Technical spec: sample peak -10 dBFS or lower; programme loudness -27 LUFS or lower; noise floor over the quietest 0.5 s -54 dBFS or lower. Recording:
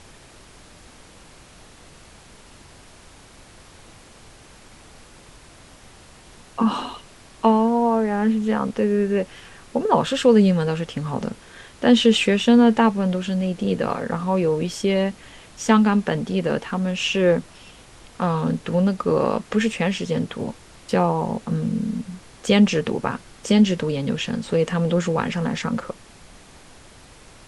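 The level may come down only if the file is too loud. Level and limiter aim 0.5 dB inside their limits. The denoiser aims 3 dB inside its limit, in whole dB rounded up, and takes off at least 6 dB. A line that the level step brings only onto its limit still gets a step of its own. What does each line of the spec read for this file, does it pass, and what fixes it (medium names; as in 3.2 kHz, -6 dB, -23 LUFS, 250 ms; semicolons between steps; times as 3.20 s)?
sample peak -4.0 dBFS: fail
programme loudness -21.0 LUFS: fail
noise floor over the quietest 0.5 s -47 dBFS: fail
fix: noise reduction 6 dB, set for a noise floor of -47 dBFS; trim -6.5 dB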